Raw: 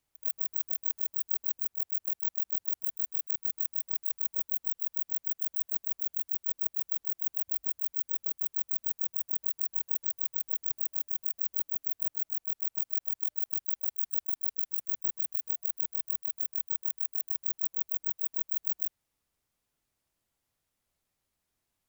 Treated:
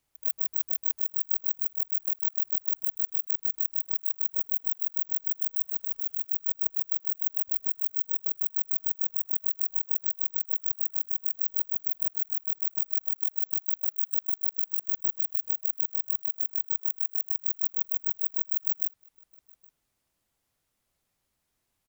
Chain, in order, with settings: 5.67–6.25 transient shaper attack -4 dB, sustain +7 dB; outdoor echo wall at 140 m, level -10 dB; gain +3.5 dB

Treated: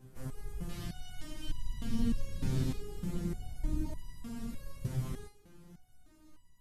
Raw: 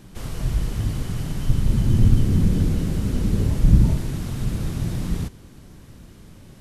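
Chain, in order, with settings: bell 3600 Hz -10.5 dB 1.8 oct, from 0.69 s +4 dB, from 2.78 s -4 dB; stepped resonator 3.3 Hz 130–980 Hz; gain +1.5 dB

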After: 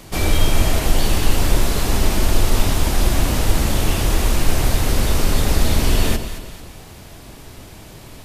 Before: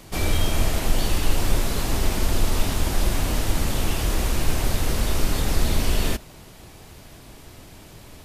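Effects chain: echo with dull and thin repeats by turns 0.11 s, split 1000 Hz, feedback 64%, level -7 dB; gain +4.5 dB

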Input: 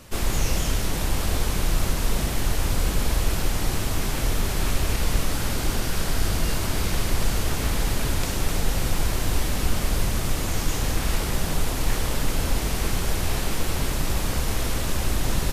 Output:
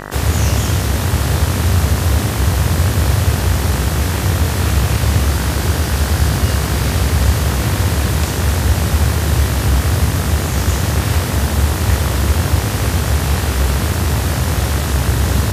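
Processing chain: frequency shift +59 Hz; buzz 50 Hz, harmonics 39, -36 dBFS -1 dB/oct; gain +6.5 dB

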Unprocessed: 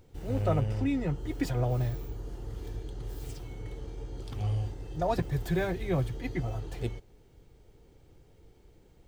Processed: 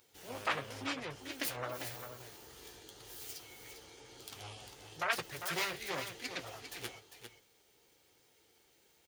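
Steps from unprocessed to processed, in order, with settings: self-modulated delay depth 0.76 ms; differentiator; spectral gate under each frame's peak -25 dB strong; high shelf 4000 Hz -8 dB; notch 7800 Hz, Q 17; echo 0.4 s -9 dB; flange 0.96 Hz, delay 7.8 ms, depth 7.6 ms, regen -41%; gain +17.5 dB

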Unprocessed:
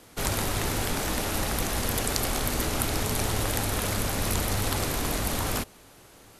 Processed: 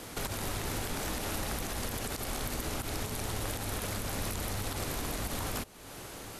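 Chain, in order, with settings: compressor 3:1, threshold -45 dBFS, peak gain reduction 17 dB; limiter -31.5 dBFS, peak gain reduction 11 dB; gain +8 dB

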